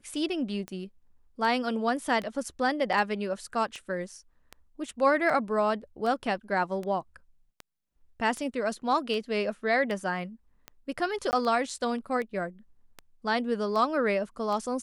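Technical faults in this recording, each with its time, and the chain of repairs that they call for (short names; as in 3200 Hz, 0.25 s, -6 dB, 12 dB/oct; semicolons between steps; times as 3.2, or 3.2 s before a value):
tick 78 rpm -23 dBFS
11.31–11.33 gap 19 ms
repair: de-click; interpolate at 11.31, 19 ms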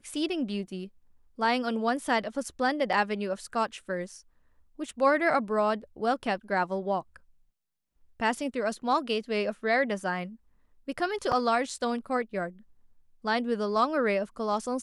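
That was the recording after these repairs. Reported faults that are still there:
none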